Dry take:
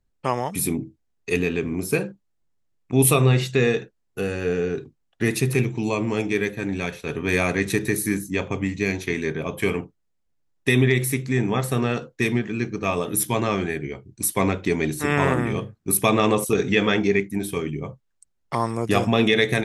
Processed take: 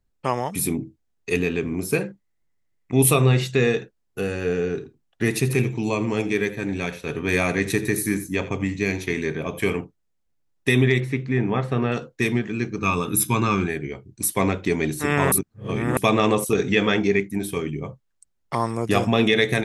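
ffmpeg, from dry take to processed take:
-filter_complex "[0:a]asettb=1/sr,asplit=3[a][b][c];[a]atrim=end=2.014[d];[b]atrim=start=2.01:end=3,asetpts=PTS-STARTPTS,afade=t=in:d=0.004:c=qsin,afade=t=out:st=0.986:d=0.004:c=qsin,equalizer=f=2k:t=o:w=0.21:g=12.5[e];[c]atrim=start=2.996[f];[d][e]acrossfade=d=0.004:c1=hsin:c2=qsin[g];[g][f]acrossfade=d=0.004:c1=qsin:c2=hsin,asettb=1/sr,asplit=3[h][i][j];[h]atrim=end=4.674[k];[i]atrim=start=4.67:end=9.73,asetpts=PTS-STARTPTS,afade=t=in:d=0.004:c=qsin,afade=t=out:st=5.056:d=0.004:c=qsin,aecho=1:1:84:0.15,atrim=end_sample=223146[l];[j]atrim=start=9.726[m];[k][l]acrossfade=d=0.004:c1=hsin:c2=qsin[n];[n][m]acrossfade=d=0.004:c1=qsin:c2=hsin,asettb=1/sr,asplit=3[o][p][q];[o]atrim=end=11.004[r];[p]atrim=start=11:end=11.92,asetpts=PTS-STARTPTS,afade=t=in:d=0.004:c=qsin,afade=t=out:st=0.916:d=0.004:c=qsin,lowpass=2.8k[s];[q]atrim=start=11.916[t];[r][s]acrossfade=d=0.004:c1=hsin:c2=qsin[u];[u][t]acrossfade=d=0.004:c1=qsin:c2=hsin,asettb=1/sr,asplit=3[v][w][x];[v]atrim=end=12.784[y];[w]atrim=start=12.78:end=13.68,asetpts=PTS-STARTPTS,afade=t=in:d=0.004:c=qsin,afade=t=out:st=0.896:d=0.004:c=qsin,aecho=1:1:0.8:0.7,atrim=end_sample=39690[z];[x]atrim=start=13.676[aa];[y][z]acrossfade=d=0.004:c1=hsin:c2=qsin[ab];[ab][aa]acrossfade=d=0.004:c1=qsin:c2=hsin,asplit=3[ac][ad][ae];[ac]atrim=end=15.322[af];[ad]atrim=start=15.318:end=15.972,asetpts=PTS-STARTPTS,areverse[ag];[ae]atrim=start=15.968[ah];[af][ag]acrossfade=d=0.004:c1=hsin:c2=hsin[ai];[ai][ah]acrossfade=d=0.004:c1=hsin:c2=hsin"

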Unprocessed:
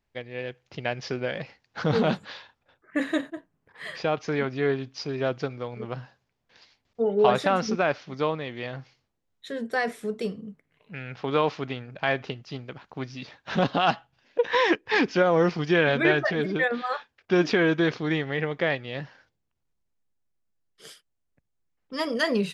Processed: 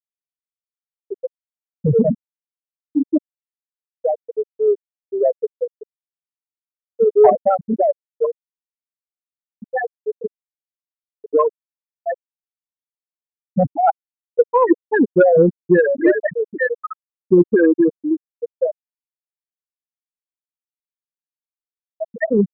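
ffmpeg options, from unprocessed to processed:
-filter_complex "[0:a]asettb=1/sr,asplit=3[a][b][c];[a]atrim=end=5.124[d];[b]atrim=start=5.12:end=5.94,asetpts=PTS-STARTPTS,afade=t=in:d=0.004:c=qsin,afade=t=out:st=0.816:d=0.004:c=qsin,aeval=exprs='val(0)+0.5*0.0422*sgn(val(0))':c=same[e];[c]atrim=start=5.936[f];[d][e]acrossfade=d=0.004:c1=hsin:c2=qsin[g];[g][f]acrossfade=d=0.004:c1=qsin:c2=hsin,asettb=1/sr,asplit=3[h][i][j];[h]atrim=end=12.674[k];[i]atrim=start=12.67:end=14.6,asetpts=PTS-STARTPTS,afade=t=in:d=0.004:c=qsin,afade=t=out:st=1.926:d=0.004:c=qsin,asubboost=boost=4.5:cutoff=100[l];[j]atrim=start=14.596[m];[k][l]acrossfade=d=0.004:c1=hsin:c2=qsin[n];[n][m]acrossfade=d=0.004:c1=qsin:c2=hsin,afftfilt=real='re*gte(hypot(re,im),0.447)':imag='im*gte(hypot(re,im),0.447)':win_size=1024:overlap=0.75,lowpass=f=1.6k:w=0.5412,lowpass=f=1.6k:w=1.3066,acontrast=76,volume=4dB"

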